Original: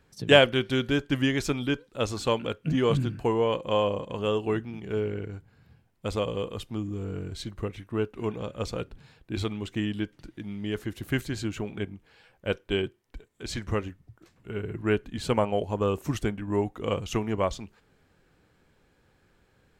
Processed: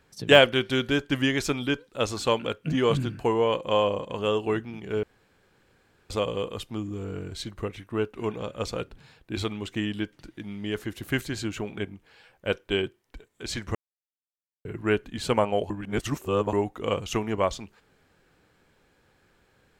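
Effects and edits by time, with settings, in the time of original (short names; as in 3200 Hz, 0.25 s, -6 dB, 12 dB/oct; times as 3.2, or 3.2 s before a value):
5.03–6.1 room tone
13.75–14.65 mute
15.7–16.53 reverse
whole clip: de-esser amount 50%; low shelf 290 Hz -5.5 dB; gain +3 dB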